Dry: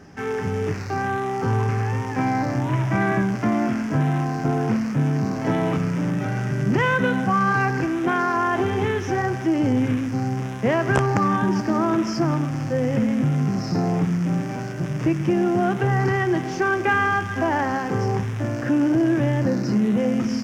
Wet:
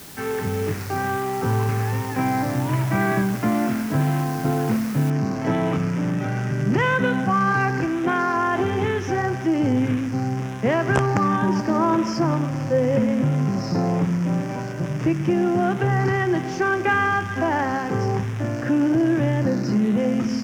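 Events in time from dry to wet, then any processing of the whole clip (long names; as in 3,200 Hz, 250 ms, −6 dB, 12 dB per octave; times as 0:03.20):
0:05.10: noise floor change −42 dB −68 dB
0:11.42–0:14.95: hollow resonant body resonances 550/980 Hz, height 8 dB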